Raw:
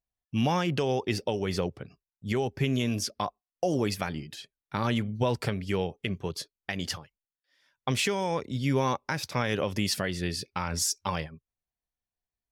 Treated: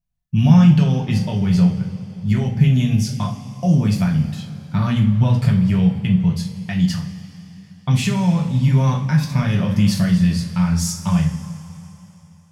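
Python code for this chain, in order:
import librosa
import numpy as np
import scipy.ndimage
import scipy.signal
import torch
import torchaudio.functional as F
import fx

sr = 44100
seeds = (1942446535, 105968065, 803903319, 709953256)

y = fx.low_shelf_res(x, sr, hz=250.0, db=12.0, q=3.0)
y = fx.hum_notches(y, sr, base_hz=60, count=2)
y = fx.rev_double_slope(y, sr, seeds[0], early_s=0.35, late_s=3.3, knee_db=-18, drr_db=-1.5)
y = y * 10.0 ** (-1.0 / 20.0)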